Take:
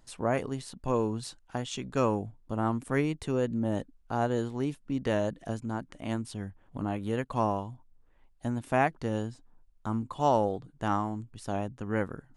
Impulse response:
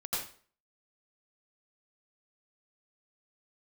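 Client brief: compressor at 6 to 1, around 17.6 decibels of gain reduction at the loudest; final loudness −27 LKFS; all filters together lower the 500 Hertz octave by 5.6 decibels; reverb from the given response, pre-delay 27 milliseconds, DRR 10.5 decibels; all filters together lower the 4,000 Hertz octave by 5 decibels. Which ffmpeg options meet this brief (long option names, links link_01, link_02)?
-filter_complex "[0:a]equalizer=frequency=500:width_type=o:gain=-7,equalizer=frequency=4000:width_type=o:gain=-7,acompressor=threshold=-43dB:ratio=6,asplit=2[link_01][link_02];[1:a]atrim=start_sample=2205,adelay=27[link_03];[link_02][link_03]afir=irnorm=-1:irlink=0,volume=-15dB[link_04];[link_01][link_04]amix=inputs=2:normalize=0,volume=20.5dB"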